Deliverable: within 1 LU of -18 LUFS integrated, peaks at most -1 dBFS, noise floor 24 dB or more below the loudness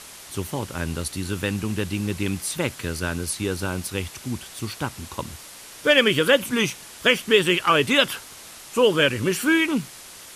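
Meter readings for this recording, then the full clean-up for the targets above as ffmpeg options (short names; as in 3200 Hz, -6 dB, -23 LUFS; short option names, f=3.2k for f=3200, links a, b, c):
noise floor -43 dBFS; noise floor target -47 dBFS; loudness -22.5 LUFS; peak -4.5 dBFS; loudness target -18.0 LUFS
-> -af "afftdn=nr=6:nf=-43"
-af "volume=4.5dB,alimiter=limit=-1dB:level=0:latency=1"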